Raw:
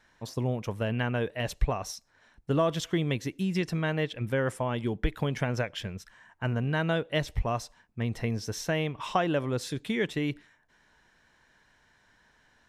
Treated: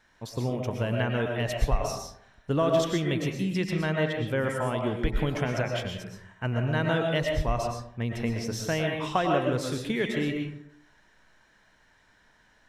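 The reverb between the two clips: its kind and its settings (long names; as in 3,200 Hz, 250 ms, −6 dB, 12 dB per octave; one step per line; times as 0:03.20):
comb and all-pass reverb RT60 0.67 s, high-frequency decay 0.45×, pre-delay 80 ms, DRR 1.5 dB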